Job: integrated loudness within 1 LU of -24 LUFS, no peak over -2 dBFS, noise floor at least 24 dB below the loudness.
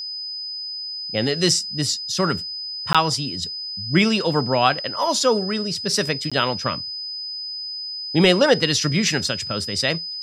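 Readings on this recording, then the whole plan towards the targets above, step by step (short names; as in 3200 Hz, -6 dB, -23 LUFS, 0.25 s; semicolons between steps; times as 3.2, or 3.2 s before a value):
dropouts 2; longest dropout 16 ms; steady tone 5000 Hz; tone level -28 dBFS; loudness -21.0 LUFS; peak -3.0 dBFS; loudness target -24.0 LUFS
-> interpolate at 2.93/6.3, 16 ms; notch 5000 Hz, Q 30; gain -3 dB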